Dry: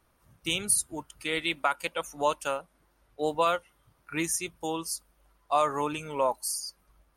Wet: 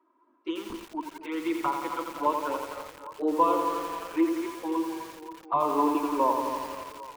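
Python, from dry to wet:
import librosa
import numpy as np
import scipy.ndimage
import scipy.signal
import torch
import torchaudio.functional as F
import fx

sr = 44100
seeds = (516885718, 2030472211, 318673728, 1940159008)

y = scipy.signal.sosfilt(scipy.signal.butter(8, 240.0, 'highpass', fs=sr, output='sos'), x)
y = fx.low_shelf(y, sr, hz=440.0, db=-11.0)
y = fx.echo_tape(y, sr, ms=267, feedback_pct=70, wet_db=-12.5, lp_hz=3200.0, drive_db=17.0, wow_cents=25)
y = fx.clip_asym(y, sr, top_db=-20.0, bottom_db=-15.0)
y = fx.small_body(y, sr, hz=(310.0, 980.0), ring_ms=20, db=18)
y = fx.env_flanger(y, sr, rest_ms=3.1, full_db=-17.5)
y = fx.spacing_loss(y, sr, db_at_10k=42)
y = fx.echo_feedback(y, sr, ms=247, feedback_pct=39, wet_db=-16.0)
y = fx.echo_crushed(y, sr, ms=86, feedback_pct=80, bits=7, wet_db=-5.5)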